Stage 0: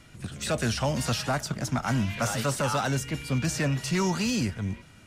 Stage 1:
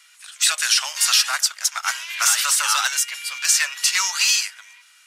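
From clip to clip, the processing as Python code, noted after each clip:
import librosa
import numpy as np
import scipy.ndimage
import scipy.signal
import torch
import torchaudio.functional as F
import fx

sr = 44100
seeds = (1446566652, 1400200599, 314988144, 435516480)

y = scipy.signal.sosfilt(scipy.signal.butter(4, 1100.0, 'highpass', fs=sr, output='sos'), x)
y = fx.high_shelf(y, sr, hz=2000.0, db=11.0)
y = fx.upward_expand(y, sr, threshold_db=-42.0, expansion=1.5)
y = y * librosa.db_to_amplitude(8.0)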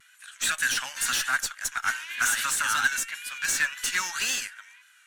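y = fx.vibrato(x, sr, rate_hz=1.9, depth_cents=68.0)
y = fx.tube_stage(y, sr, drive_db=12.0, bias=0.3)
y = fx.graphic_eq_31(y, sr, hz=(250, 1600, 5000), db=(9, 11, -9))
y = y * librosa.db_to_amplitude(-6.0)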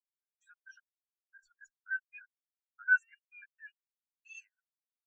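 y = fx.over_compress(x, sr, threshold_db=-30.0, ratio=-1.0)
y = fx.step_gate(y, sr, bpm=113, pattern='xx.x.x....x', floor_db=-60.0, edge_ms=4.5)
y = fx.spectral_expand(y, sr, expansion=4.0)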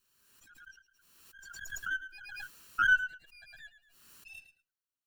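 y = fx.lower_of_two(x, sr, delay_ms=0.7)
y = fx.echo_feedback(y, sr, ms=109, feedback_pct=17, wet_db=-12)
y = fx.pre_swell(y, sr, db_per_s=40.0)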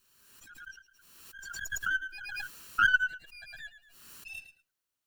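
y = fx.transformer_sat(x, sr, knee_hz=460.0)
y = y * librosa.db_to_amplitude(6.5)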